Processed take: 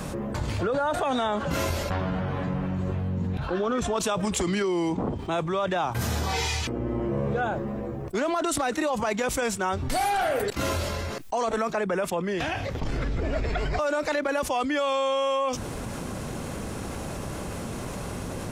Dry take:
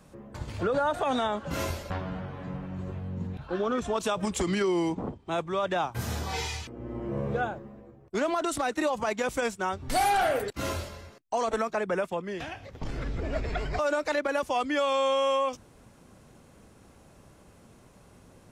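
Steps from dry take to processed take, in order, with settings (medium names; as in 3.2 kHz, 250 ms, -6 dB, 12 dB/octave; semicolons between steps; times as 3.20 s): level flattener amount 70%; trim -1.5 dB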